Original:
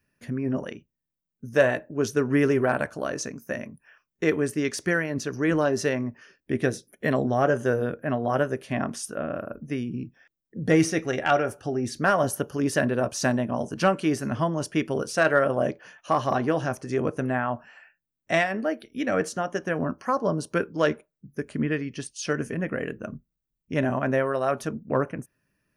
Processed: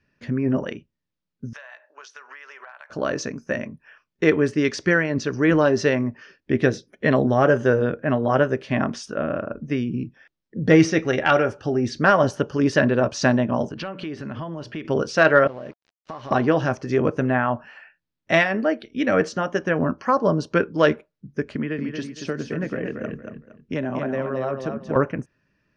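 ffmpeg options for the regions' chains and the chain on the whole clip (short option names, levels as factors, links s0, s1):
-filter_complex "[0:a]asettb=1/sr,asplit=3[s0][s1][s2];[s0]atrim=end=1.534[s3];[s1]atrim=start=1.53:end=2.9,asetpts=PTS-STARTPTS,afade=t=in:d=0.004:c=qsin,afade=t=out:st=1.366:d=0.004:c=qsin,highpass=f=850:w=0.5412,highpass=f=850:w=1.3066,acompressor=threshold=0.00708:ratio=16:attack=3.2:release=140:knee=1:detection=peak[s4];[s2]atrim=start=2.896[s5];[s3][s4]acrossfade=d=0.004:c1=hsin:c2=qsin[s6];[s6][s5]acrossfade=d=0.004:c1=qsin:c2=hsin,asettb=1/sr,asplit=3[s7][s8][s9];[s7]atrim=end=13.694[s10];[s8]atrim=start=13.69:end=14.85,asetpts=PTS-STARTPTS,afade=t=in:d=0.004:c=qsin,afade=t=out:st=1.156:d=0.004:c=qsin,highshelf=f=4800:t=q:w=1.5:g=-6.5,bandreject=f=60:t=h:w=6,bandreject=f=120:t=h:w=6,bandreject=f=180:t=h:w=6,bandreject=f=240:t=h:w=6,acompressor=threshold=0.02:ratio=6:attack=3.2:release=140:knee=1:detection=peak[s11];[s9]atrim=start=14.846[s12];[s10][s11]acrossfade=d=0.004:c1=hsin:c2=qsin[s13];[s13][s12]acrossfade=d=0.004:c1=qsin:c2=hsin,asettb=1/sr,asplit=3[s14][s15][s16];[s14]atrim=end=15.474[s17];[s15]atrim=start=15.47:end=16.31,asetpts=PTS-STARTPTS,afade=t=in:d=0.004:c=qsin,afade=t=out:st=0.836:d=0.004:c=qsin,aeval=exprs='sgn(val(0))*max(abs(val(0))-0.01,0)':c=same,acompressor=threshold=0.0141:ratio=6:attack=3.2:release=140:knee=1:detection=peak[s18];[s16]atrim=start=16.306[s19];[s17][s18]acrossfade=d=0.004:c1=hsin:c2=qsin[s20];[s20][s19]acrossfade=d=0.004:c1=qsin:c2=hsin,asettb=1/sr,asplit=3[s21][s22][s23];[s21]atrim=end=21.554[s24];[s22]atrim=start=21.55:end=24.96,asetpts=PTS-STARTPTS,afade=t=in:d=0.004:c=qsin,afade=t=out:st=3.406:d=0.004:c=qsin,acrossover=split=150|710[s25][s26][s27];[s25]acompressor=threshold=0.00398:ratio=4[s28];[s26]acompressor=threshold=0.0282:ratio=4[s29];[s27]acompressor=threshold=0.00891:ratio=4[s30];[s28][s29][s30]amix=inputs=3:normalize=0,aecho=1:1:231|462|693:0.501|0.135|0.0365,atrim=end_sample=150381[s31];[s23]atrim=start=24.956[s32];[s24][s31]acrossfade=d=0.004:c1=hsin:c2=qsin[s33];[s33][s32]acrossfade=d=0.004:c1=qsin:c2=hsin,lowpass=f=5400:w=0.5412,lowpass=f=5400:w=1.3066,bandreject=f=710:w=17,volume=1.88"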